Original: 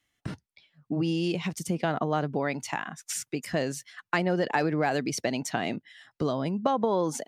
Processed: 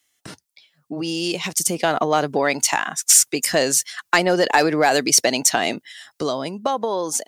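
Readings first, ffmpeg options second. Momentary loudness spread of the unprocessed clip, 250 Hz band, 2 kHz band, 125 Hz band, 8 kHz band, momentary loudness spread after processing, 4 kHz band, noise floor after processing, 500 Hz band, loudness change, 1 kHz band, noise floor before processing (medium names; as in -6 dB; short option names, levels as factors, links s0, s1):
8 LU, +3.5 dB, +10.5 dB, -1.0 dB, +20.5 dB, 12 LU, +15.0 dB, -72 dBFS, +8.0 dB, +10.5 dB, +9.0 dB, -85 dBFS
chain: -filter_complex "[0:a]bass=f=250:g=-12,treble=f=4000:g=12,dynaudnorm=f=240:g=13:m=3.16,asplit=2[s0][s1];[s1]asoftclip=type=tanh:threshold=0.266,volume=0.631[s2];[s0][s2]amix=inputs=2:normalize=0,volume=0.891"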